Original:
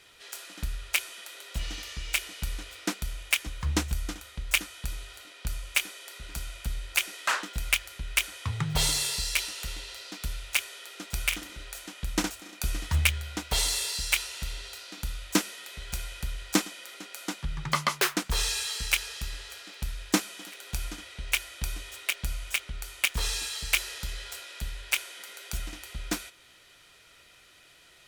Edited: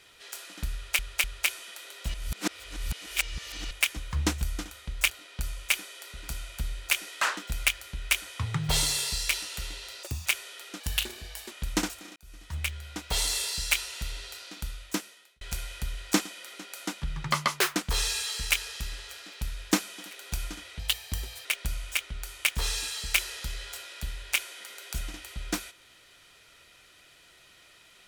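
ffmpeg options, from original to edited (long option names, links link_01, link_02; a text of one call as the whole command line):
ffmpeg -i in.wav -filter_complex "[0:a]asplit=14[link_01][link_02][link_03][link_04][link_05][link_06][link_07][link_08][link_09][link_10][link_11][link_12][link_13][link_14];[link_01]atrim=end=0.992[link_15];[link_02]atrim=start=0.738:end=0.992[link_16];[link_03]atrim=start=0.738:end=1.642[link_17];[link_04]atrim=start=1.638:end=3.212,asetpts=PTS-STARTPTS,areverse[link_18];[link_05]atrim=start=3.208:end=4.602[link_19];[link_06]atrim=start=5.158:end=10.094[link_20];[link_07]atrim=start=10.09:end=10.52,asetpts=PTS-STARTPTS,asetrate=82467,aresample=44100[link_21];[link_08]atrim=start=10.516:end=11.064[link_22];[link_09]atrim=start=11.06:end=11.92,asetpts=PTS-STARTPTS,asetrate=53361,aresample=44100[link_23];[link_10]atrim=start=11.916:end=12.57,asetpts=PTS-STARTPTS,afade=type=out:start_time=0.65:duration=0.004:curve=hsin[link_24];[link_11]atrim=start=12.57:end=15.82,asetpts=PTS-STARTPTS,afade=type=in:duration=1.2,afade=type=out:start_time=2.29:duration=0.96[link_25];[link_12]atrim=start=15.82:end=21.204,asetpts=PTS-STARTPTS,afade=type=in:duration=0.004:curve=hsin[link_26];[link_13]atrim=start=21.2:end=22.04,asetpts=PTS-STARTPTS,asetrate=56007,aresample=44100[link_27];[link_14]atrim=start=22.036[link_28];[link_15][link_16]acrossfade=duration=0.004:curve1=hsin:curve2=hsin[link_29];[link_29][link_17]acrossfade=duration=0.004:curve1=hsin:curve2=hsin[link_30];[link_30][link_18]acrossfade=duration=0.004:curve1=hsin:curve2=hsin[link_31];[link_31][link_19]acrossfade=duration=0.004:curve1=hsin:curve2=hsin[link_32];[link_32][link_20]acrossfade=duration=0.004:curve1=hsin:curve2=hsin[link_33];[link_33][link_21]acrossfade=duration=0.004:curve1=hsin:curve2=hsin[link_34];[link_34][link_22]acrossfade=duration=0.004:curve1=hsin:curve2=hsin[link_35];[link_35][link_23]acrossfade=duration=0.004:curve1=hsin:curve2=hsin[link_36];[link_24][link_25][link_26]concat=n=3:v=0:a=1[link_37];[link_36][link_37]acrossfade=duration=0.004:curve1=hsin:curve2=hsin[link_38];[link_38][link_27]acrossfade=duration=0.004:curve1=hsin:curve2=hsin[link_39];[link_39][link_28]acrossfade=duration=0.004:curve1=hsin:curve2=hsin" out.wav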